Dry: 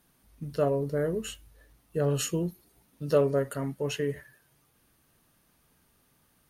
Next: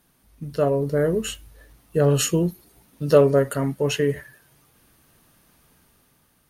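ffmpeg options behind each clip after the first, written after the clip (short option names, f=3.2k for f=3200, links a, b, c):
-af "dynaudnorm=f=180:g=9:m=5dB,volume=3.5dB"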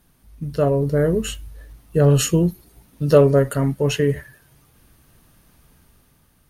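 -af "lowshelf=f=120:g=11.5,volume=1dB"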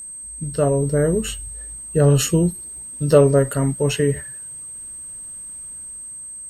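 -af "aeval=exprs='val(0)+0.0251*sin(2*PI*8300*n/s)':c=same"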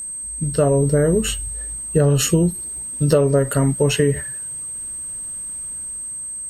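-af "acompressor=threshold=-17dB:ratio=6,volume=5dB"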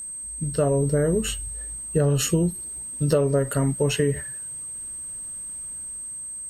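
-af "acrusher=bits=9:mix=0:aa=0.000001,volume=-5dB"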